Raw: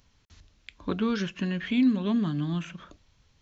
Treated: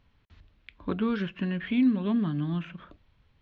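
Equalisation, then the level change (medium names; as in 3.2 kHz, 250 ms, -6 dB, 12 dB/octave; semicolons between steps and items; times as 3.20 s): distance through air 470 m; treble shelf 2.6 kHz +8.5 dB; 0.0 dB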